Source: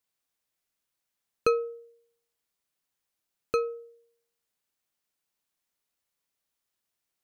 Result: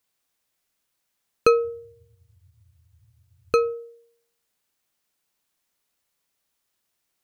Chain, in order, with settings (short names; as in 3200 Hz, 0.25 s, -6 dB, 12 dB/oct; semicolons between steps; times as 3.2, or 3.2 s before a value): 1.55–3.72 band noise 73–120 Hz -65 dBFS; ending taper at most 260 dB/s; gain +7 dB